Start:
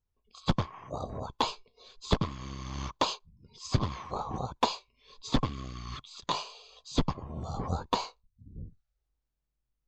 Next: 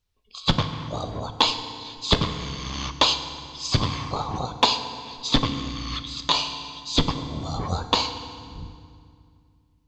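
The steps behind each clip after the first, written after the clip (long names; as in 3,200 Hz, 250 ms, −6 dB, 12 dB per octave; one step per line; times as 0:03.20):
parametric band 3,600 Hz +10 dB 1.8 octaves
feedback delay network reverb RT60 2.2 s, low-frequency decay 1.4×, high-frequency decay 0.8×, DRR 8 dB
level +4.5 dB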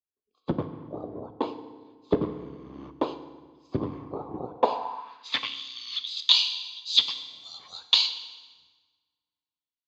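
band-pass filter sweep 360 Hz → 3,600 Hz, 0:04.45–0:05.63
multiband upward and downward expander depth 40%
level +3 dB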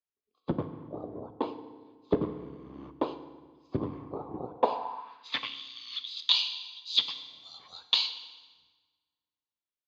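high-frequency loss of the air 100 metres
level −2.5 dB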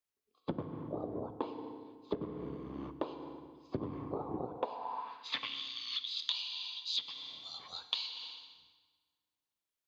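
downward compressor 8 to 1, threshold −36 dBFS, peak gain reduction 18.5 dB
level +2.5 dB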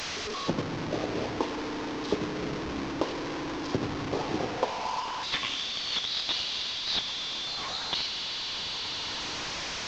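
linear delta modulator 32 kbit/s, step −35.5 dBFS
level +7.5 dB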